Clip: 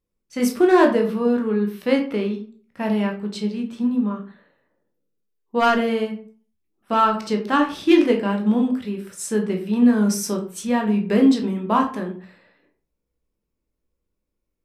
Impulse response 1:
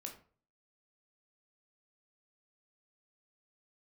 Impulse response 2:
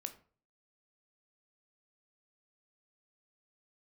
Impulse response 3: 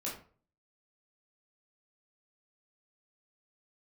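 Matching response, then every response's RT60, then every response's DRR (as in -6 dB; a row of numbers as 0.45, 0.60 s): 1; 0.45, 0.45, 0.45 s; 1.5, 7.5, -6.0 dB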